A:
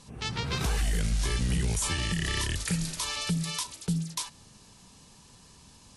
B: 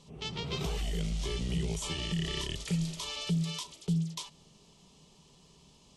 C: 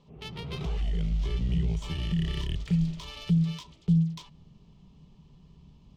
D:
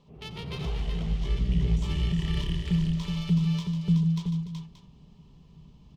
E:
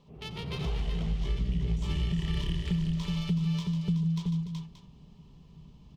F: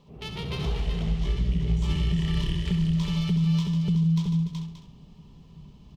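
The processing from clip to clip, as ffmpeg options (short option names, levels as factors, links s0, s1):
-af "equalizer=f=100:t=o:w=0.33:g=-11,equalizer=f=160:t=o:w=0.33:g=8,equalizer=f=400:t=o:w=0.33:g=9,equalizer=f=630:t=o:w=0.33:g=5,equalizer=f=1600:t=o:w=0.33:g=-11,equalizer=f=3150:t=o:w=0.33:g=7,equalizer=f=10000:t=o:w=0.33:g=-12,volume=0.473"
-af "asubboost=boost=5:cutoff=210,adynamicsmooth=sensitivity=5:basefreq=2900,volume=0.841"
-af "aecho=1:1:87|93|148|292|374|578:0.178|0.15|0.355|0.168|0.531|0.2"
-af "acompressor=threshold=0.0562:ratio=6"
-af "aecho=1:1:67|134|201|268:0.355|0.114|0.0363|0.0116,volume=1.5"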